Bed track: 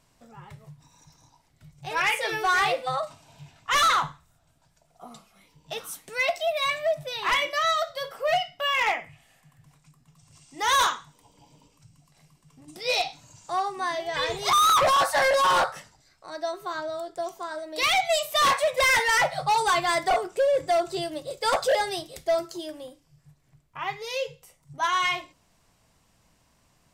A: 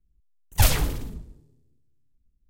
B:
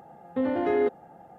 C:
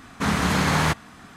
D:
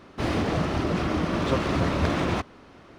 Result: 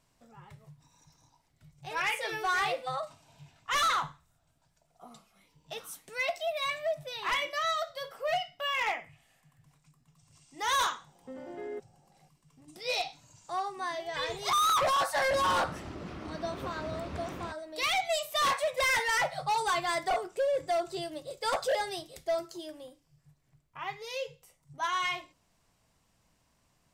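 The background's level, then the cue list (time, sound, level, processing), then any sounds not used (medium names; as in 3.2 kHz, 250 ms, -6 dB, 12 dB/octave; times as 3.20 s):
bed track -6.5 dB
10.91 s: add B -17 dB + comb 5.3 ms, depth 43%
15.11 s: add D -16 dB
not used: A, C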